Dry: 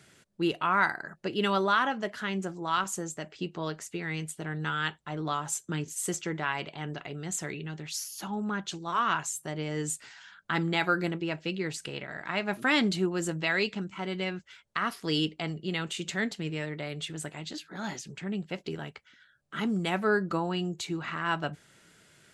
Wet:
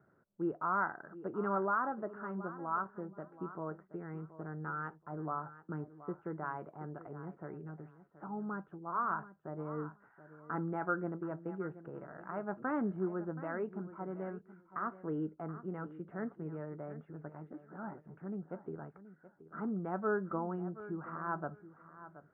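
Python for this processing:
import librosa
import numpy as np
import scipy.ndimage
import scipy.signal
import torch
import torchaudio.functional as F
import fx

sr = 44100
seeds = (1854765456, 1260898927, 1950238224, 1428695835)

y = scipy.signal.sosfilt(scipy.signal.ellip(4, 1.0, 70, 1400.0, 'lowpass', fs=sr, output='sos'), x)
y = fx.low_shelf(y, sr, hz=88.0, db=-7.0)
y = fx.echo_feedback(y, sr, ms=726, feedback_pct=18, wet_db=-15)
y = y * 10.0 ** (-6.0 / 20.0)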